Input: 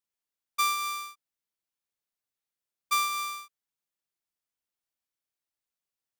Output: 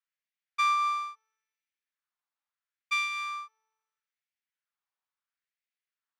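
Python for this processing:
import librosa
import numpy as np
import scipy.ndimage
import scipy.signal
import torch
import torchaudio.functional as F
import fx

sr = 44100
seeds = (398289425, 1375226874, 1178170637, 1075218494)

y = fx.spacing_loss(x, sr, db_at_10k=21)
y = fx.comb_fb(y, sr, f0_hz=88.0, decay_s=1.5, harmonics='all', damping=0.0, mix_pct=30)
y = fx.filter_lfo_highpass(y, sr, shape='sine', hz=0.75, low_hz=950.0, high_hz=2100.0, q=2.1)
y = F.gain(torch.from_numpy(y), 5.5).numpy()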